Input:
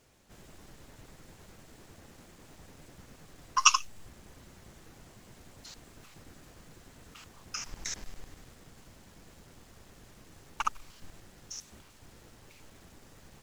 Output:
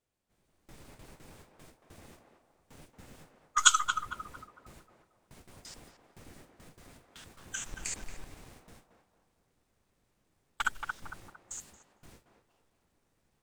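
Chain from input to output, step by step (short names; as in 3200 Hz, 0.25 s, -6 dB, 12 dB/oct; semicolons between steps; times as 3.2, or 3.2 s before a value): gate with hold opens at -42 dBFS; formant shift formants +3 st; narrowing echo 0.227 s, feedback 45%, band-pass 780 Hz, level -4 dB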